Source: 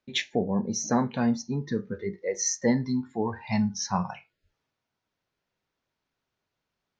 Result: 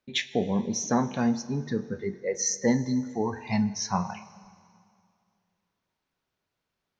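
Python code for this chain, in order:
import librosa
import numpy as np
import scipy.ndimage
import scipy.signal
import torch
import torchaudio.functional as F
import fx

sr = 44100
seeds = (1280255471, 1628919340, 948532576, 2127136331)

y = fx.rev_plate(x, sr, seeds[0], rt60_s=2.3, hf_ratio=0.95, predelay_ms=0, drr_db=14.5)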